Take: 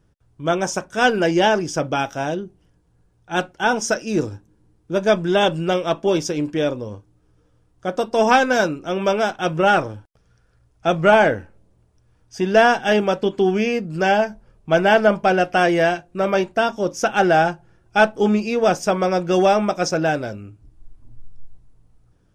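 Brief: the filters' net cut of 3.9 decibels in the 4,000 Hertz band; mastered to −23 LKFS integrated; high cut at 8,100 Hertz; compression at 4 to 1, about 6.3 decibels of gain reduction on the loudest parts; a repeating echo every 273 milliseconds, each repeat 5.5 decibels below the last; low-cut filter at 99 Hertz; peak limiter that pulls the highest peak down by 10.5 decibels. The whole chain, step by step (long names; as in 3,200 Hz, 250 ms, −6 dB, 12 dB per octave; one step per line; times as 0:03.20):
high-pass filter 99 Hz
low-pass filter 8,100 Hz
parametric band 4,000 Hz −5.5 dB
downward compressor 4 to 1, threshold −17 dBFS
brickwall limiter −18.5 dBFS
repeating echo 273 ms, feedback 53%, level −5.5 dB
level +3.5 dB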